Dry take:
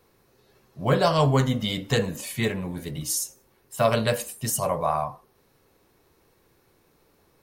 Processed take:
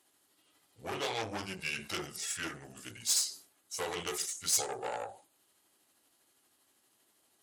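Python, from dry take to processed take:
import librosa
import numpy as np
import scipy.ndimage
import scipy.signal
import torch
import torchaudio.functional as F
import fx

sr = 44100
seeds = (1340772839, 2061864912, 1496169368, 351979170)

y = fx.pitch_heads(x, sr, semitones=-5.0)
y = fx.tube_stage(y, sr, drive_db=23.0, bias=0.55)
y = fx.highpass(y, sr, hz=530.0, slope=6)
y = fx.high_shelf(y, sr, hz=2500.0, db=10.0)
y = fx.sustainer(y, sr, db_per_s=140.0)
y = F.gain(torch.from_numpy(y), -6.0).numpy()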